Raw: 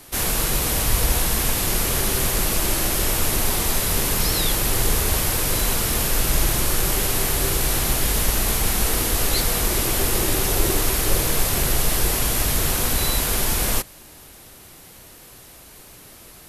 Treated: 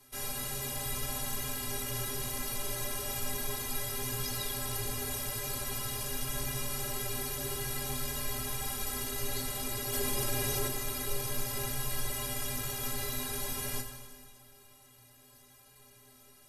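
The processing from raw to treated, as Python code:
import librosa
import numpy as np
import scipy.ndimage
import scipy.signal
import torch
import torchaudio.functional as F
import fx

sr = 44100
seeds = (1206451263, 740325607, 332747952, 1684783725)

y = fx.stiff_resonator(x, sr, f0_hz=120.0, decay_s=0.27, stiffness=0.03)
y = fx.rev_plate(y, sr, seeds[0], rt60_s=2.0, hf_ratio=0.9, predelay_ms=0, drr_db=5.0)
y = fx.env_flatten(y, sr, amount_pct=50, at=(9.92, 10.67), fade=0.02)
y = F.gain(torch.from_numpy(y), -5.5).numpy()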